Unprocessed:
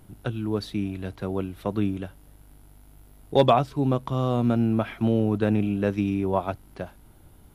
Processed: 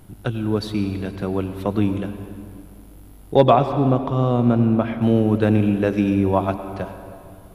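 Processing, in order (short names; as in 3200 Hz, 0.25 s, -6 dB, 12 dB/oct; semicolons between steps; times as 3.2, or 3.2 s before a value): 3.35–5.02 high shelf 3100 Hz -10 dB; reverb RT60 2.5 s, pre-delay 84 ms, DRR 9.5 dB; gain +5 dB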